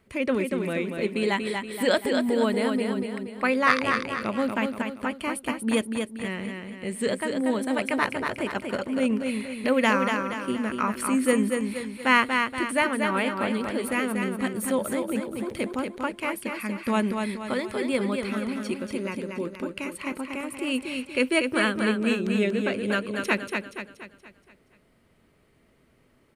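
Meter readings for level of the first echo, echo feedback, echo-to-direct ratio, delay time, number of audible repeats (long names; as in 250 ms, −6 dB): −5.0 dB, 46%, −4.0 dB, 237 ms, 5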